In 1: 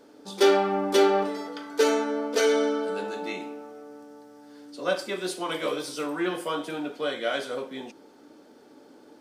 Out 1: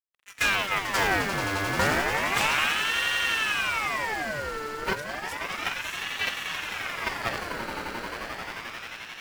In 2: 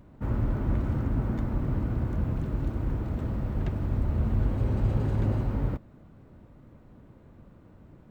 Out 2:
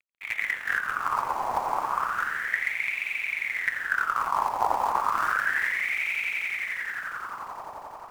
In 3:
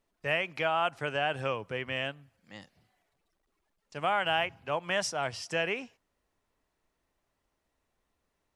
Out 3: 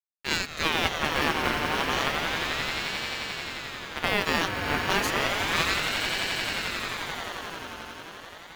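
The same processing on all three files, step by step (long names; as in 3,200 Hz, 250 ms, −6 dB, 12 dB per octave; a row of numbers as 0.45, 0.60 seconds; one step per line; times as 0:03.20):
one scale factor per block 5 bits
in parallel at +1 dB: output level in coarse steps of 13 dB
on the sum: harmonic generator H 6 −9 dB, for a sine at −5 dBFS
dead-zone distortion −39 dBFS
parametric band 2,700 Hz −7.5 dB 0.25 octaves
on a send: echo that builds up and dies away 88 ms, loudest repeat 8, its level −10 dB
on the sum: ring modulator whose carrier an LFO sweeps 1,600 Hz, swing 45%, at 0.32 Hz
loudness normalisation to −27 LKFS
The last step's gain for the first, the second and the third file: −7.5, −7.5, 0.0 decibels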